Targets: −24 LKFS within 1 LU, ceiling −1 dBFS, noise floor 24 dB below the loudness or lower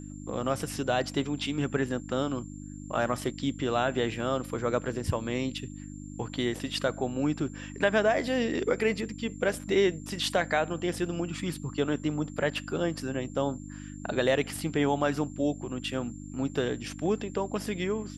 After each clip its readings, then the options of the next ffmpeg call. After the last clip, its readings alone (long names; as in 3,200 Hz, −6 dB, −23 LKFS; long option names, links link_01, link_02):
mains hum 50 Hz; hum harmonics up to 300 Hz; level of the hum −39 dBFS; interfering tone 7,300 Hz; level of the tone −52 dBFS; integrated loudness −30.0 LKFS; sample peak −11.5 dBFS; target loudness −24.0 LKFS
→ -af "bandreject=frequency=50:width_type=h:width=4,bandreject=frequency=100:width_type=h:width=4,bandreject=frequency=150:width_type=h:width=4,bandreject=frequency=200:width_type=h:width=4,bandreject=frequency=250:width_type=h:width=4,bandreject=frequency=300:width_type=h:width=4"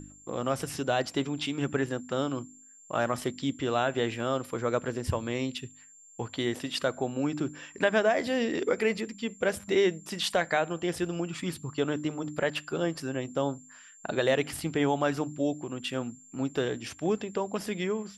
mains hum none found; interfering tone 7,300 Hz; level of the tone −52 dBFS
→ -af "bandreject=frequency=7300:width=30"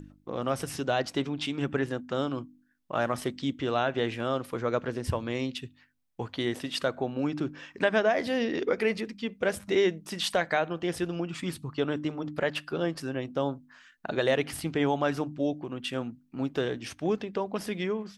interfering tone none found; integrated loudness −30.5 LKFS; sample peak −11.5 dBFS; target loudness −24.0 LKFS
→ -af "volume=6.5dB"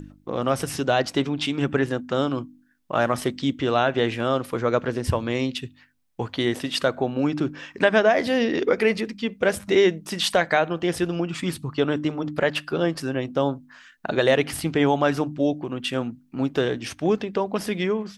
integrated loudness −24.0 LKFS; sample peak −5.0 dBFS; background noise floor −57 dBFS